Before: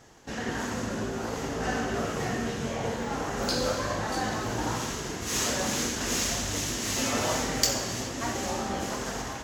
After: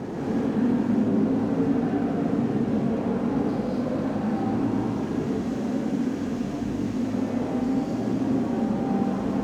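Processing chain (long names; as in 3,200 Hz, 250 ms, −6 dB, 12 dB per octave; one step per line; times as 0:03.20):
sign of each sample alone
resonant band-pass 250 Hz, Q 2
reverb whose tail is shaped and stops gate 270 ms rising, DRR −4 dB
level +8.5 dB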